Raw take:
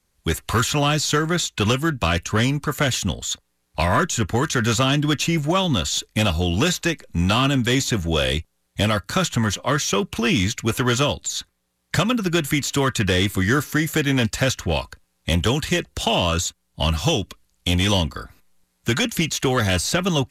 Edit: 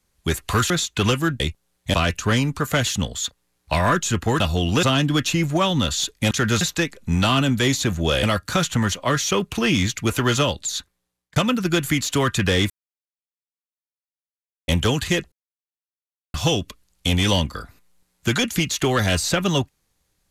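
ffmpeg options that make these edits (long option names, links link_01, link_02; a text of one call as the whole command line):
ffmpeg -i in.wav -filter_complex "[0:a]asplit=14[link_01][link_02][link_03][link_04][link_05][link_06][link_07][link_08][link_09][link_10][link_11][link_12][link_13][link_14];[link_01]atrim=end=0.702[link_15];[link_02]atrim=start=1.308:end=2.012[link_16];[link_03]atrim=start=8.298:end=8.842[link_17];[link_04]atrim=start=2.008:end=4.472[link_18];[link_05]atrim=start=6.248:end=6.682[link_19];[link_06]atrim=start=4.768:end=6.252[link_20];[link_07]atrim=start=4.468:end=4.772[link_21];[link_08]atrim=start=6.678:end=8.302[link_22];[link_09]atrim=start=8.838:end=11.97,asetpts=PTS-STARTPTS,afade=type=out:start_time=2.552:duration=0.58[link_23];[link_10]atrim=start=11.97:end=13.31,asetpts=PTS-STARTPTS,afade=type=in:duration=0.004:curve=hsin,afade=type=out:start_time=1.336:duration=0.004:curve=hsin[link_24];[link_11]atrim=start=13.31:end=15.29,asetpts=PTS-STARTPTS,volume=0[link_25];[link_12]atrim=start=15.29:end=15.93,asetpts=PTS-STARTPTS,afade=type=in:duration=0.004:curve=hsin,afade=type=out:start_time=0.636:duration=0.004:curve=hsin[link_26];[link_13]atrim=start=15.93:end=16.95,asetpts=PTS-STARTPTS,volume=0[link_27];[link_14]atrim=start=16.95,asetpts=PTS-STARTPTS,afade=type=in:duration=0.004:curve=hsin[link_28];[link_15][link_16]acrossfade=duration=0.004:curve1=hsin:curve2=hsin[link_29];[link_29][link_17]acrossfade=duration=0.004:curve1=hsin:curve2=hsin[link_30];[link_30][link_18]acrossfade=duration=0.004:curve1=hsin:curve2=hsin[link_31];[link_31][link_19]acrossfade=duration=0.004:curve1=hsin:curve2=hsin[link_32];[link_32][link_20]acrossfade=duration=0.004:curve1=hsin:curve2=hsin[link_33];[link_33][link_21]acrossfade=duration=0.004:curve1=hsin:curve2=hsin[link_34];[link_34][link_22]acrossfade=duration=0.004:curve1=hsin:curve2=hsin[link_35];[link_23][link_24][link_25][link_26][link_27][link_28]concat=n=6:v=0:a=1[link_36];[link_35][link_36]acrossfade=duration=0.004:curve1=hsin:curve2=hsin" out.wav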